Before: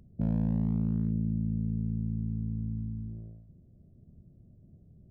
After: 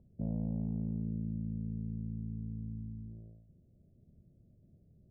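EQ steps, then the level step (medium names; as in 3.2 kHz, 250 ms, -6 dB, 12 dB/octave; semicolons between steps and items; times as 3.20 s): four-pole ladder low-pass 770 Hz, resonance 35%; 0.0 dB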